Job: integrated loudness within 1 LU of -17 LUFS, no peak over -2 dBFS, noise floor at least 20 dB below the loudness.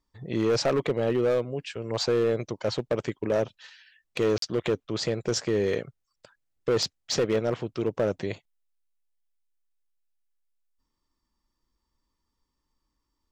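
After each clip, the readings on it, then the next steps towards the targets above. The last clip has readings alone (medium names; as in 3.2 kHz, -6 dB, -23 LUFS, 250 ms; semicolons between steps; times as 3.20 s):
clipped samples 1.3%; clipping level -18.5 dBFS; dropouts 1; longest dropout 43 ms; loudness -27.5 LUFS; peak level -18.5 dBFS; loudness target -17.0 LUFS
-> clip repair -18.5 dBFS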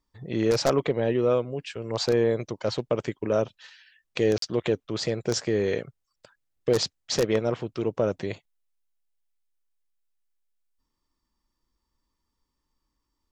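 clipped samples 0.0%; dropouts 1; longest dropout 43 ms
-> interpolate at 4.38 s, 43 ms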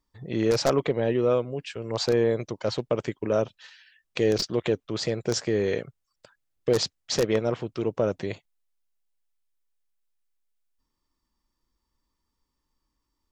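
dropouts 0; loudness -26.5 LUFS; peak level -9.5 dBFS; loudness target -17.0 LUFS
-> trim +9.5 dB; peak limiter -2 dBFS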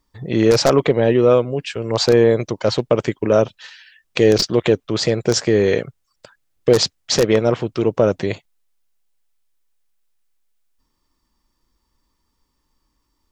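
loudness -17.5 LUFS; peak level -2.0 dBFS; noise floor -71 dBFS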